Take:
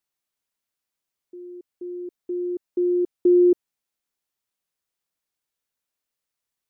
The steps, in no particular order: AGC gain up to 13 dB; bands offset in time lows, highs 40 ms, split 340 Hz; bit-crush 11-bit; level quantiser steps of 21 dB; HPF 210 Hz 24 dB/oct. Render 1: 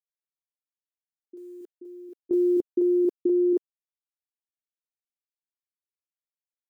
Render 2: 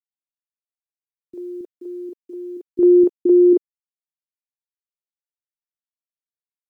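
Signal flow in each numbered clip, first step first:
HPF > bit-crush > AGC > bands offset in time > level quantiser; HPF > level quantiser > AGC > bands offset in time > bit-crush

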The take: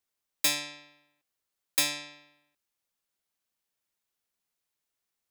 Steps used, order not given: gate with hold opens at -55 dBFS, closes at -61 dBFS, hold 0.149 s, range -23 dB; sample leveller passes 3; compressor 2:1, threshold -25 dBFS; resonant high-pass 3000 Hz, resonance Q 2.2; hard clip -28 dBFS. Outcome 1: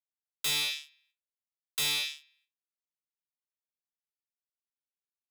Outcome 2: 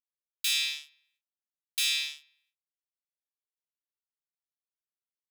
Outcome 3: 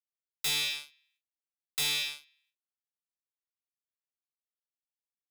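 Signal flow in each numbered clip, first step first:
sample leveller > resonant high-pass > gate with hold > hard clip > compressor; gate with hold > sample leveller > compressor > hard clip > resonant high-pass; gate with hold > resonant high-pass > compressor > sample leveller > hard clip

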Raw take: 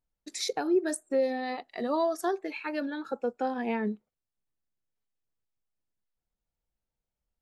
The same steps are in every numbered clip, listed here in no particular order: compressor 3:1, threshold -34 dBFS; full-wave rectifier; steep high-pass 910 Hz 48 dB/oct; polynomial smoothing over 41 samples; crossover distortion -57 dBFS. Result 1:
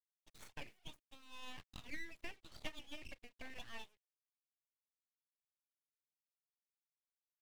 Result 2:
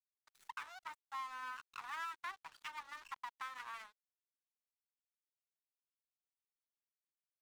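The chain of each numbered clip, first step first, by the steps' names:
polynomial smoothing > crossover distortion > compressor > steep high-pass > full-wave rectifier; compressor > polynomial smoothing > full-wave rectifier > steep high-pass > crossover distortion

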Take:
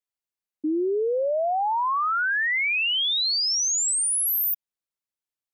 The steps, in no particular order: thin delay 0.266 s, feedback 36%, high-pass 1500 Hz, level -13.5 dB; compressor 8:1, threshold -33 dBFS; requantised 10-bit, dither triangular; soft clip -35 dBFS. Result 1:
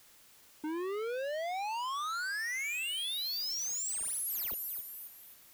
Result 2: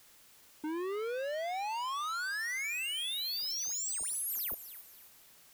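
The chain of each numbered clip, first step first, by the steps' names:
thin delay > soft clip > requantised > compressor; soft clip > thin delay > requantised > compressor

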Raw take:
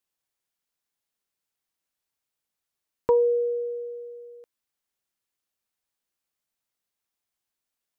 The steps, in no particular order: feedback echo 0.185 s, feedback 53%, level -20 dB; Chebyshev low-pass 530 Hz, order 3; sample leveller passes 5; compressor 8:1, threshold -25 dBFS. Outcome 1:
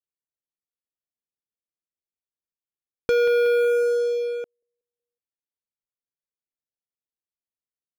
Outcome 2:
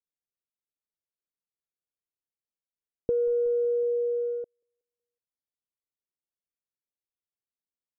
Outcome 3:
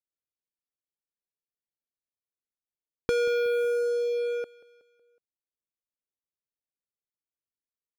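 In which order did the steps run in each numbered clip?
Chebyshev low-pass > compressor > feedback echo > sample leveller; feedback echo > sample leveller > compressor > Chebyshev low-pass; Chebyshev low-pass > sample leveller > compressor > feedback echo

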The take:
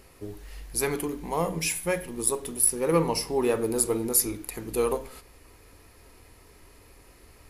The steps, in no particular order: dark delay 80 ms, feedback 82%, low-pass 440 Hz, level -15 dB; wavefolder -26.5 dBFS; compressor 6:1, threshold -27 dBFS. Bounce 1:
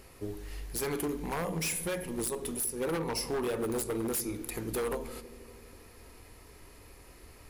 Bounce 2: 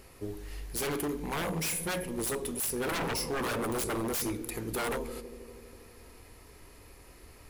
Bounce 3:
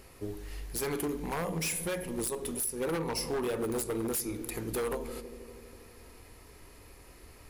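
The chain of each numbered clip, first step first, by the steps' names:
compressor > dark delay > wavefolder; dark delay > wavefolder > compressor; dark delay > compressor > wavefolder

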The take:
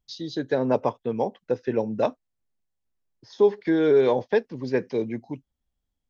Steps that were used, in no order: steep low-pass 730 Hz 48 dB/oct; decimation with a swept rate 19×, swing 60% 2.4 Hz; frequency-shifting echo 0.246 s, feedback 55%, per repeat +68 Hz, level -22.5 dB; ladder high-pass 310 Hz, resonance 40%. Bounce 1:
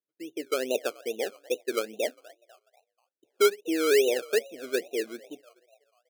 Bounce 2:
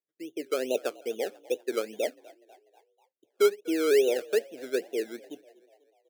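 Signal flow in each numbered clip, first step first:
ladder high-pass > frequency-shifting echo > steep low-pass > decimation with a swept rate; steep low-pass > decimation with a swept rate > frequency-shifting echo > ladder high-pass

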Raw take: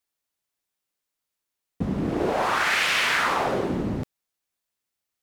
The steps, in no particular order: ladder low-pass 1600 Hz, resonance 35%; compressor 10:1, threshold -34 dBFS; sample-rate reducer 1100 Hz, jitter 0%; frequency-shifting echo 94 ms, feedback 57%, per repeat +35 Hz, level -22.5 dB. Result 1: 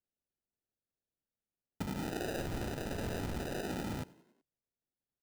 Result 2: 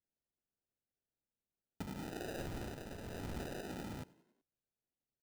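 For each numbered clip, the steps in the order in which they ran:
ladder low-pass > sample-rate reducer > compressor > frequency-shifting echo; compressor > ladder low-pass > sample-rate reducer > frequency-shifting echo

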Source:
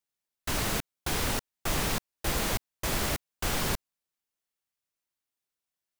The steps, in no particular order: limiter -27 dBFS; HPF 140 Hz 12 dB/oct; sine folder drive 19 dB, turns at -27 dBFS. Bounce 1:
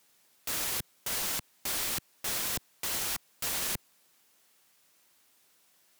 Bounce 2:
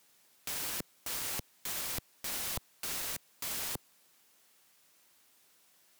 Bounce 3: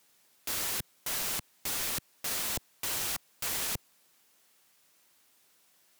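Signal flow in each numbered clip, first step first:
limiter > HPF > sine folder; HPF > sine folder > limiter; HPF > limiter > sine folder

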